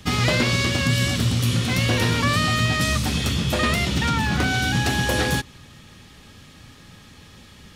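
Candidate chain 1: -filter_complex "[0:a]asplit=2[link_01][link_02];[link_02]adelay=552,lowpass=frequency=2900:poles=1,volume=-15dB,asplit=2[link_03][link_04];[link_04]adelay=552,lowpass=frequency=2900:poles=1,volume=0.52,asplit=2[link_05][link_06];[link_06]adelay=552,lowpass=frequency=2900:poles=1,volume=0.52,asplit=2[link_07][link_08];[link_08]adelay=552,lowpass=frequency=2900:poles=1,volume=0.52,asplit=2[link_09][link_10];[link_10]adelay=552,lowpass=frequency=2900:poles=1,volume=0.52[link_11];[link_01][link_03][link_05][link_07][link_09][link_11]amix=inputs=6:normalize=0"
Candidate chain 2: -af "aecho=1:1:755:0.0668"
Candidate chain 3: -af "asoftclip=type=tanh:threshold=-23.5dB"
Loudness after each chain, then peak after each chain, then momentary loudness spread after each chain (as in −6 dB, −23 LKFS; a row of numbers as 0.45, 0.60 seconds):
−20.5, −21.0, −26.5 LKFS; −8.0, −9.0, −23.5 dBFS; 7, 3, 20 LU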